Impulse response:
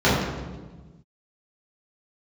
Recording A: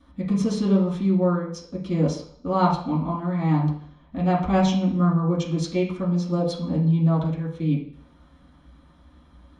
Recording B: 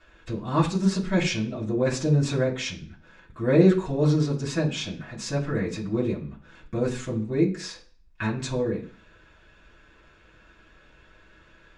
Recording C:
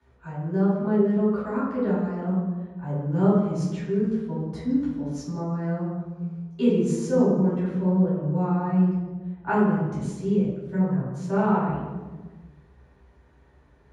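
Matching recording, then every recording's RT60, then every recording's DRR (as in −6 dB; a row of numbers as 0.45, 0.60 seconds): C; 0.60, 0.40, 1.3 seconds; −6.5, −5.5, −10.5 decibels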